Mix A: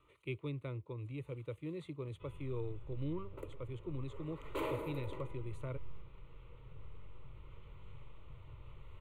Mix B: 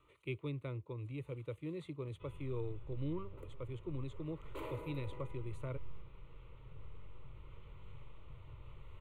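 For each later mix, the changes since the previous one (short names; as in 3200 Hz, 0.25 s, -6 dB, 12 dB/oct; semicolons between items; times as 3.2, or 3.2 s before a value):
second sound -7.5 dB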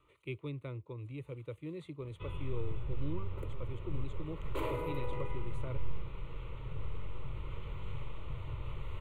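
first sound +12.0 dB; second sound +7.5 dB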